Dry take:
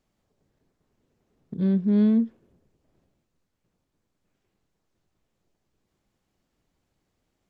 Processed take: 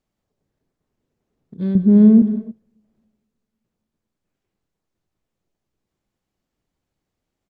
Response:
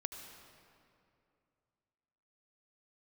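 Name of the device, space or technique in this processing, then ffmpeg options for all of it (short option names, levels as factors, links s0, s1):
keyed gated reverb: -filter_complex "[0:a]asettb=1/sr,asplit=3[s0][s1][s2];[s0]atrim=end=1.754[s3];[s1]atrim=start=1.75:end=2.22,asetpts=PTS-STARTPTS,afade=t=in:d=0.004:c=qsin,afade=t=out:st=0.466:d=0.004:c=qsin,tiltshelf=f=1300:g=9.5[s4];[s2]atrim=start=2.216[s5];[s3][s4]acrossfade=d=0.004:c1=hsin:c2=qsin[s6];[s6][s5]acrossfade=d=0.004:c1=qsin:c2=hsin,aecho=1:1:294:0.106,asplit=3[s7][s8][s9];[1:a]atrim=start_sample=2205[s10];[s8][s10]afir=irnorm=-1:irlink=0[s11];[s9]apad=whole_len=343439[s12];[s11][s12]sidechaingate=range=0.0251:threshold=0.0355:ratio=16:detection=peak,volume=1.12[s13];[s7][s13]amix=inputs=2:normalize=0,volume=0.596"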